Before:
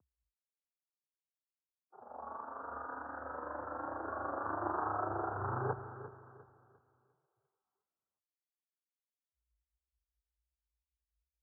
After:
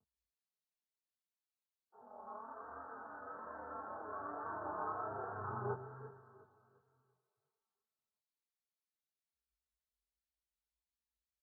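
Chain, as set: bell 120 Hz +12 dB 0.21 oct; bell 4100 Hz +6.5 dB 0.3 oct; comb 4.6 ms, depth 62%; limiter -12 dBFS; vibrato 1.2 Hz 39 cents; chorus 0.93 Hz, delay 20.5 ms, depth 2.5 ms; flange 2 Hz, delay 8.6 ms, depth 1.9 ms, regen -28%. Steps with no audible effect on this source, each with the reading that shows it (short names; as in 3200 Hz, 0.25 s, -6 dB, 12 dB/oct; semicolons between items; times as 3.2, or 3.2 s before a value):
bell 4100 Hz: input band ends at 1700 Hz; limiter -12 dBFS: input peak -22.5 dBFS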